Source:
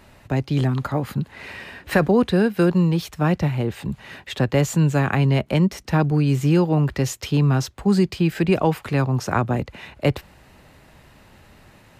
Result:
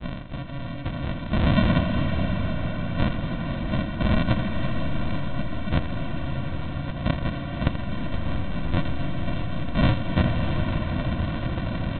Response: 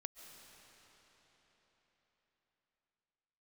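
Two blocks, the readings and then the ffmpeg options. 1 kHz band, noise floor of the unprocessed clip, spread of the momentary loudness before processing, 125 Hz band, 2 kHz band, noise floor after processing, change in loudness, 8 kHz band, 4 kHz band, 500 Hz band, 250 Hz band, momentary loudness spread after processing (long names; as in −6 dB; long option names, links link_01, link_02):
−4.5 dB, −51 dBFS, 11 LU, −4.5 dB, −3.5 dB, −32 dBFS, −6.0 dB, below −40 dB, −1.5 dB, −9.0 dB, −5.5 dB, 8 LU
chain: -filter_complex "[0:a]asplit=2[link_01][link_02];[link_02]highpass=frequency=720:poles=1,volume=39dB,asoftclip=type=tanh:threshold=-5.5dB[link_03];[link_01][link_03]amix=inputs=2:normalize=0,lowpass=frequency=1000:poles=1,volume=-6dB,areverse,acompressor=threshold=-23dB:ratio=10,areverse,crystalizer=i=10:c=0,agate=range=-33dB:threshold=-15dB:ratio=3:detection=peak,aresample=8000,acrusher=samples=19:mix=1:aa=0.000001,aresample=44100,aecho=1:1:83|166|249|332|415|498|581:0.299|0.17|0.097|0.0553|0.0315|0.018|0.0102[link_04];[1:a]atrim=start_sample=2205,asetrate=22932,aresample=44100[link_05];[link_04][link_05]afir=irnorm=-1:irlink=0,volume=1dB"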